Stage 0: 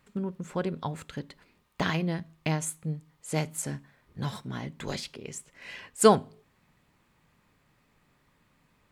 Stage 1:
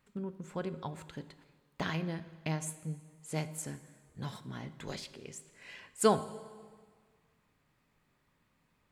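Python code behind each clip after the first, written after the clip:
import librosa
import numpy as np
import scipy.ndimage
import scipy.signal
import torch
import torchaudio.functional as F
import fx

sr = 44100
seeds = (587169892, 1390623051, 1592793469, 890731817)

y = fx.rev_plate(x, sr, seeds[0], rt60_s=1.7, hf_ratio=0.85, predelay_ms=0, drr_db=13.0)
y = y * 10.0 ** (-7.0 / 20.0)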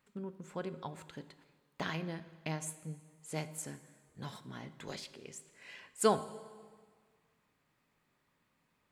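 y = fx.low_shelf(x, sr, hz=110.0, db=-10.0)
y = y * 10.0 ** (-1.5 / 20.0)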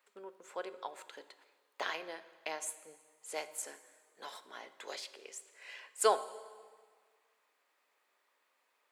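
y = scipy.signal.sosfilt(scipy.signal.butter(4, 440.0, 'highpass', fs=sr, output='sos'), x)
y = y * 10.0 ** (2.0 / 20.0)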